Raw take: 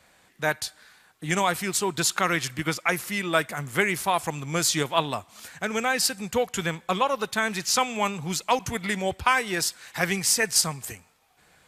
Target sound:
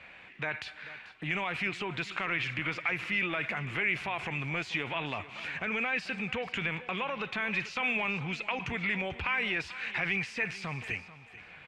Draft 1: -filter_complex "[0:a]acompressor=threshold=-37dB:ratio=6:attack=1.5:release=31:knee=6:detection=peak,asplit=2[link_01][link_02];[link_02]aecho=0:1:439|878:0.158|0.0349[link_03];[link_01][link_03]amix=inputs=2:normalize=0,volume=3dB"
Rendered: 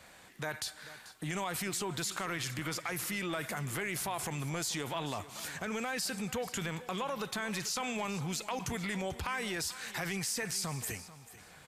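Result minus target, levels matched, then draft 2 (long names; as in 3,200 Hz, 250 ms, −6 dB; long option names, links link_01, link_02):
2,000 Hz band −5.0 dB
-filter_complex "[0:a]acompressor=threshold=-37dB:ratio=6:attack=1.5:release=31:knee=6:detection=peak,lowpass=frequency=2500:width_type=q:width=4.4,asplit=2[link_01][link_02];[link_02]aecho=0:1:439|878:0.158|0.0349[link_03];[link_01][link_03]amix=inputs=2:normalize=0,volume=3dB"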